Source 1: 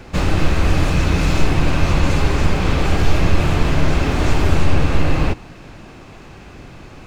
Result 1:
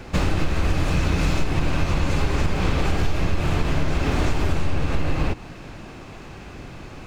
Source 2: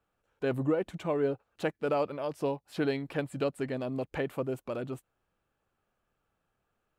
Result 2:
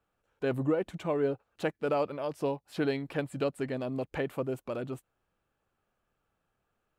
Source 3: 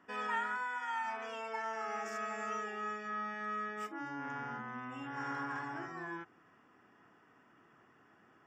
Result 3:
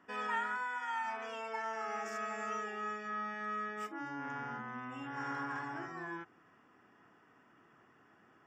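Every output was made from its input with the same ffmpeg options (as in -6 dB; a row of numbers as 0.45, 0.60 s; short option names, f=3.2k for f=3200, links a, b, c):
-af "acompressor=threshold=-16dB:ratio=6"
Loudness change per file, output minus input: -5.5, 0.0, 0.0 LU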